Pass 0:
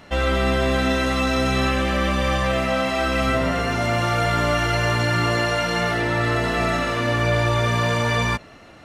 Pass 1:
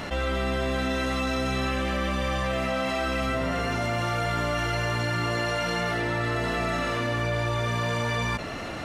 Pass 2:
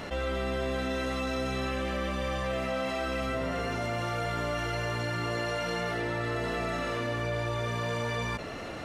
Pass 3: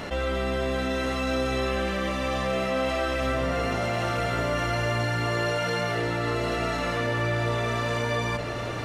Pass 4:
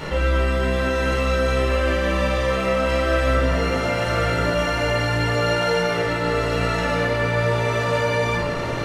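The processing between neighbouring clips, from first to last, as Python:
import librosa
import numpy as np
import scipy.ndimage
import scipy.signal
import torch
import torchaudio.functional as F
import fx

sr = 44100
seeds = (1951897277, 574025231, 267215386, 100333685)

y1 = fx.env_flatten(x, sr, amount_pct=70)
y1 = y1 * 10.0 ** (-8.0 / 20.0)
y2 = fx.peak_eq(y1, sr, hz=460.0, db=4.5, octaves=0.68)
y2 = y2 * 10.0 ** (-5.5 / 20.0)
y3 = y2 + 10.0 ** (-6.5 / 20.0) * np.pad(y2, (int(1036 * sr / 1000.0), 0))[:len(y2)]
y3 = y3 * 10.0 ** (4.0 / 20.0)
y4 = fx.room_shoebox(y3, sr, seeds[0], volume_m3=920.0, walls='furnished', distance_m=4.5)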